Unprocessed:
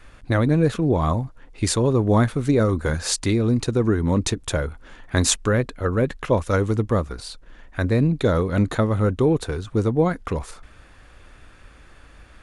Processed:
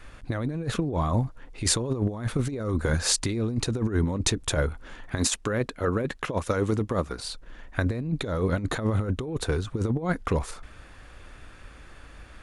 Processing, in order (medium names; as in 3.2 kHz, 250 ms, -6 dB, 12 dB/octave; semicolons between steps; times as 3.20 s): 5.18–7.25 s: bass shelf 87 Hz -11.5 dB; compressor with a negative ratio -22 dBFS, ratio -0.5; trim -2.5 dB